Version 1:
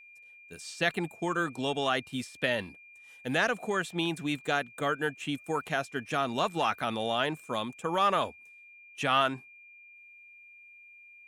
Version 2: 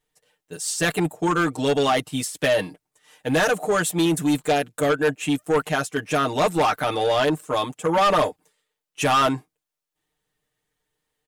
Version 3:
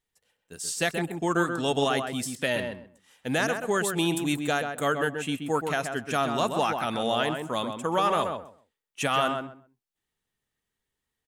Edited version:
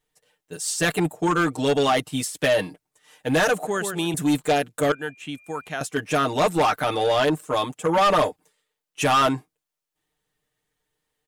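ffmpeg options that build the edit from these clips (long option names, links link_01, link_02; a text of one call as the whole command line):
ffmpeg -i take0.wav -i take1.wav -i take2.wav -filter_complex "[1:a]asplit=3[link_01][link_02][link_03];[link_01]atrim=end=3.672[link_04];[2:a]atrim=start=3.668:end=4.142[link_05];[link_02]atrim=start=4.138:end=4.922[link_06];[0:a]atrim=start=4.918:end=5.812[link_07];[link_03]atrim=start=5.808[link_08];[link_04][link_05]acrossfade=duration=0.004:curve1=hsin:curve2=hsin[link_09];[link_09][link_06]acrossfade=duration=0.004:curve1=hsin:curve2=hsin[link_10];[link_10][link_07]acrossfade=duration=0.004:curve1=hsin:curve2=hsin[link_11];[link_11][link_08]acrossfade=duration=0.004:curve1=hsin:curve2=hsin" out.wav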